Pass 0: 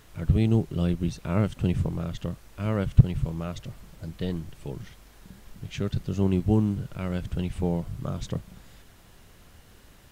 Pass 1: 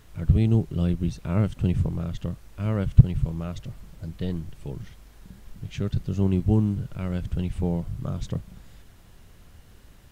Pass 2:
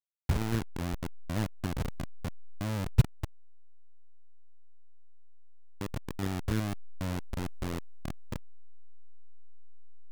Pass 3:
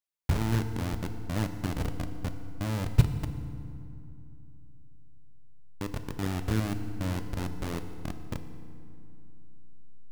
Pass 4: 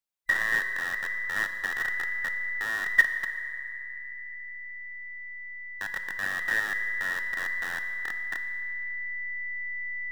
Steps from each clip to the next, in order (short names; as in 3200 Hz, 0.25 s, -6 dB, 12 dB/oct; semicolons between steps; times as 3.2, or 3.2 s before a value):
low shelf 180 Hz +7 dB; gain -2.5 dB
level-crossing sampler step -16.5 dBFS; gain -8.5 dB
reverb RT60 2.7 s, pre-delay 3 ms, DRR 8 dB; gain +1.5 dB
band inversion scrambler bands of 2000 Hz